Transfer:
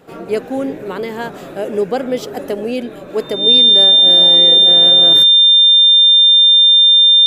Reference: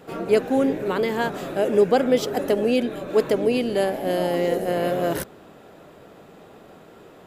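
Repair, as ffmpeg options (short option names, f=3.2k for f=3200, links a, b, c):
-af "bandreject=f=3.6k:w=30"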